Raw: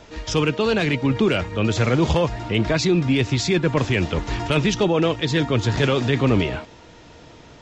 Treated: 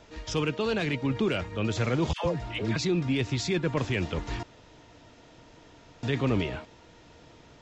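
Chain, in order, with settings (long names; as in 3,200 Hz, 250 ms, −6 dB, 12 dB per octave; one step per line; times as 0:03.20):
0:02.13–0:02.76: all-pass dispersion lows, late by 118 ms, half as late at 690 Hz
0:04.43–0:06.03: fill with room tone
level −8 dB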